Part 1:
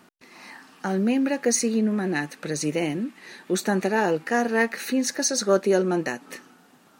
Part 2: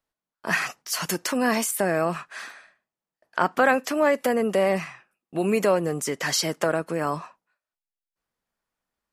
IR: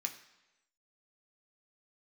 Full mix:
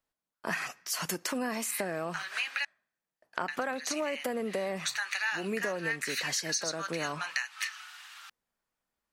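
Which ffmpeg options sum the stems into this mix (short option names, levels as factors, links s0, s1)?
-filter_complex "[0:a]highpass=f=1100:w=0.5412,highpass=f=1100:w=1.3066,equalizer=f=3100:w=0.41:g=14,adelay=1300,volume=1.19,asplit=3[s0][s1][s2];[s0]atrim=end=2.65,asetpts=PTS-STARTPTS,afade=t=out:st=2.646:d=0.004:c=hsin[s3];[s1]atrim=start=2.65:end=3.48,asetpts=PTS-STARTPTS,volume=0[s4];[s2]atrim=start=3.48,asetpts=PTS-STARTPTS,afade=t=in:d=0.004:c=hsin[s5];[s3][s4][s5]concat=n=3:v=0:a=1[s6];[1:a]volume=0.75,asplit=3[s7][s8][s9];[s8]volume=0.119[s10];[s9]apad=whole_len=365884[s11];[s6][s11]sidechaincompress=threshold=0.0316:ratio=4:attack=45:release=758[s12];[2:a]atrim=start_sample=2205[s13];[s10][s13]afir=irnorm=-1:irlink=0[s14];[s12][s7][s14]amix=inputs=3:normalize=0,acompressor=threshold=0.0316:ratio=6"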